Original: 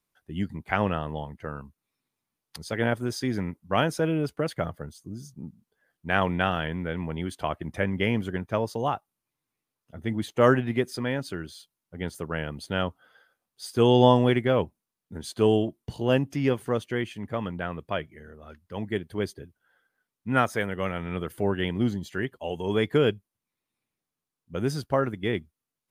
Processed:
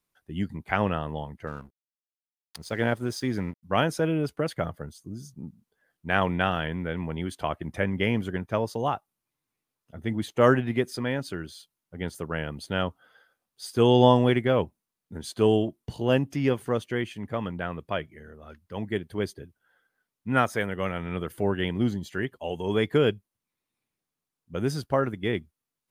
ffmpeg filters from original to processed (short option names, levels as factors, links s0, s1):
-filter_complex "[0:a]asettb=1/sr,asplit=3[s0][s1][s2];[s0]atrim=end=1.474[s3];[s1]atrim=start=1.47:end=3.63,asetpts=PTS-STARTPTS,afade=t=in:d=0.004:c=qsin,afade=t=out:st=2.156:d=0.004:c=qsin,aeval=exprs='sgn(val(0))*max(abs(val(0))-0.00237,0)':c=same[s4];[s2]atrim=start=3.626[s5];[s3][s4]acrossfade=d=0.004:c1=hsin:c2=qsin[s6];[s6][s5]acrossfade=d=0.004:c1=qsin:c2=hsin"